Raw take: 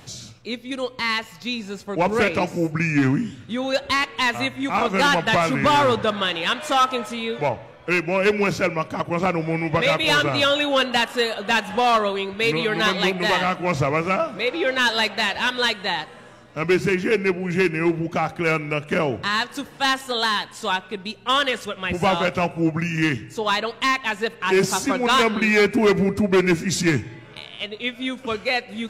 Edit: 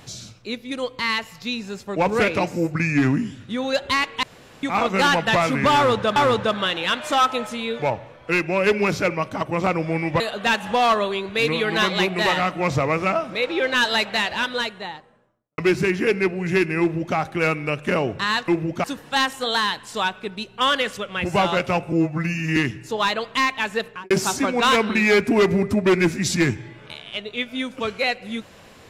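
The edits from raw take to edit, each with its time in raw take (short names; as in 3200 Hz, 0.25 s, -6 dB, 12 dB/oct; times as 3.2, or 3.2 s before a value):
4.23–4.63 room tone
5.75–6.16 loop, 2 plays
9.79–11.24 cut
15.2–16.62 studio fade out
17.84–18.2 copy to 19.52
22.6–23.03 stretch 1.5×
24.32–24.57 studio fade out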